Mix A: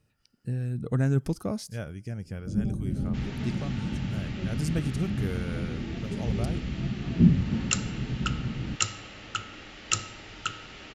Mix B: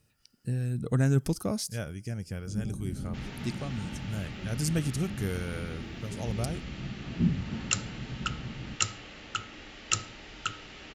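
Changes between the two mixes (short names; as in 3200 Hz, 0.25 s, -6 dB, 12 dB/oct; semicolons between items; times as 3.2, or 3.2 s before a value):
speech: add high shelf 4000 Hz +9.5 dB; first sound -7.5 dB; reverb: off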